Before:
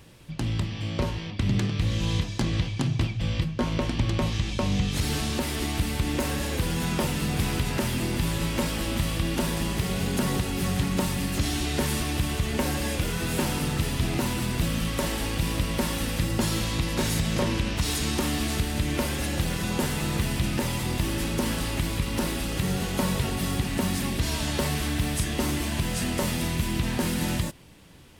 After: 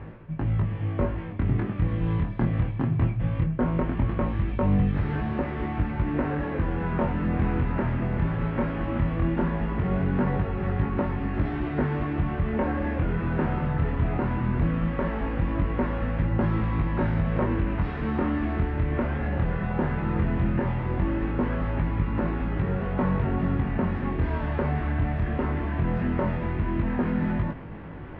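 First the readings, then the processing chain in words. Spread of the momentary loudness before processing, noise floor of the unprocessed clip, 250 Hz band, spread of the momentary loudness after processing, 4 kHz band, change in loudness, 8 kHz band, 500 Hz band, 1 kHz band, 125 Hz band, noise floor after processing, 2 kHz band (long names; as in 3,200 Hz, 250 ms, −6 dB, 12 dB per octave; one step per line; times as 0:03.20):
2 LU, −34 dBFS, +1.5 dB, 3 LU, below −15 dB, +0.5 dB, below −40 dB, +1.5 dB, +1.5 dB, +2.0 dB, −32 dBFS, −3.0 dB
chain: low-pass filter 1,800 Hz 24 dB per octave
reversed playback
upward compression, threshold −28 dBFS
reversed playback
chorus effect 0.18 Hz, delay 19 ms, depth 6.9 ms
level +4.5 dB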